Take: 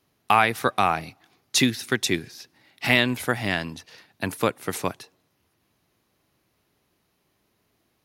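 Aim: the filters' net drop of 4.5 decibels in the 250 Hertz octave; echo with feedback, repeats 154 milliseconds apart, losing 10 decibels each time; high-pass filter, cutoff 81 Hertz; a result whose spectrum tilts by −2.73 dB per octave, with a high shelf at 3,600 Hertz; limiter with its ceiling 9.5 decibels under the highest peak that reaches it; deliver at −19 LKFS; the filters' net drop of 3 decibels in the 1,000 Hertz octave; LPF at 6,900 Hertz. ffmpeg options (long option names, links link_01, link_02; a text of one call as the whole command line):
ffmpeg -i in.wav -af "highpass=81,lowpass=6900,equalizer=frequency=250:width_type=o:gain=-5,equalizer=frequency=1000:width_type=o:gain=-4.5,highshelf=frequency=3600:gain=7,alimiter=limit=-12.5dB:level=0:latency=1,aecho=1:1:154|308|462|616:0.316|0.101|0.0324|0.0104,volume=9dB" out.wav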